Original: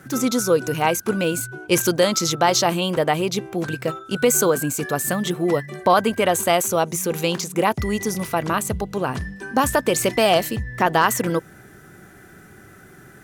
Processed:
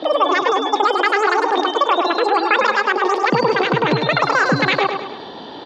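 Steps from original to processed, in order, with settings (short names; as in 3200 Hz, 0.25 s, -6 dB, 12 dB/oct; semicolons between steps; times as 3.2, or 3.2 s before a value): HPF 45 Hz 12 dB/oct; low shelf 250 Hz -7 dB; speed mistake 33 rpm record played at 78 rpm; in parallel at +1 dB: negative-ratio compressor -31 dBFS, ratio -1; on the sum: spectral gate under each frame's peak -30 dB strong; LPF 5000 Hz 24 dB/oct; tilt shelf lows +5.5 dB, about 1400 Hz; feedback echo 0.103 s, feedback 44%, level -6 dB; gain +1.5 dB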